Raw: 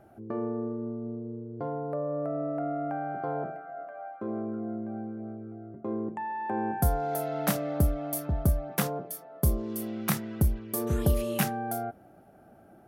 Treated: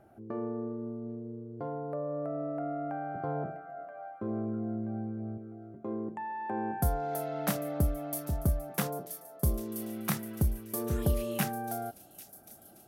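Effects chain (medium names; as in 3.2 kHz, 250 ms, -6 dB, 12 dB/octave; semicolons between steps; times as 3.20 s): 3.15–5.38 s: peaking EQ 74 Hz +13.5 dB 2 oct; feedback echo behind a high-pass 796 ms, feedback 68%, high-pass 4.5 kHz, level -12 dB; trim -3.5 dB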